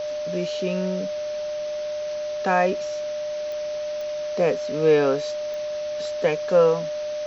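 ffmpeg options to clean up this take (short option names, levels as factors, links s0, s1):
-af "adeclick=t=4,bandreject=f=600:w=30,afwtdn=0.011"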